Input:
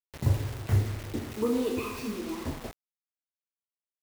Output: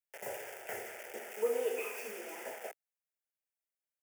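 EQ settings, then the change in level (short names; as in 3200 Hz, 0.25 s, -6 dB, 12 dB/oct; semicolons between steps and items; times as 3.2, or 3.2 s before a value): HPF 360 Hz 24 dB/oct; fixed phaser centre 1100 Hz, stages 6; +1.0 dB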